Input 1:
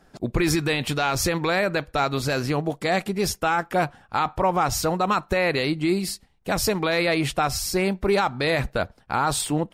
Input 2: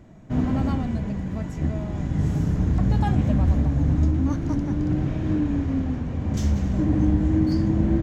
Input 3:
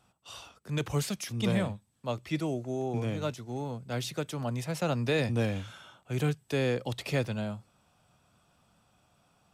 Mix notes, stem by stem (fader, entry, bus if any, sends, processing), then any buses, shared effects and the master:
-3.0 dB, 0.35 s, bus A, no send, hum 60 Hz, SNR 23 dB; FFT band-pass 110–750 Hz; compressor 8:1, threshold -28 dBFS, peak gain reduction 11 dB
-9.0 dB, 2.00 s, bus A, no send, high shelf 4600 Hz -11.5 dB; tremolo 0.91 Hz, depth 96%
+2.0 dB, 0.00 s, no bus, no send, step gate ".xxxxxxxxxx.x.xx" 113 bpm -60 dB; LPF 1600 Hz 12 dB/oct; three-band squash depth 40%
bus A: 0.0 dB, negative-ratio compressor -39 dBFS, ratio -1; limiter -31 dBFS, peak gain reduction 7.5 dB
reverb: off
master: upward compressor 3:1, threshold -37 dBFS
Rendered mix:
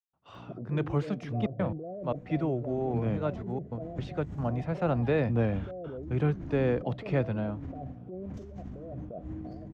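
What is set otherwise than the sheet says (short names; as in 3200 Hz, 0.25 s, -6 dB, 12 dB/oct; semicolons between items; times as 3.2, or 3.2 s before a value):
stem 3: missing three-band squash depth 40%; master: missing upward compressor 3:1, threshold -37 dBFS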